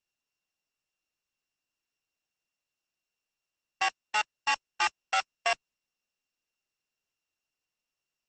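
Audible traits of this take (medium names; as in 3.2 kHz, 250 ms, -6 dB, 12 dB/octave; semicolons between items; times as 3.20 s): a buzz of ramps at a fixed pitch in blocks of 16 samples; Opus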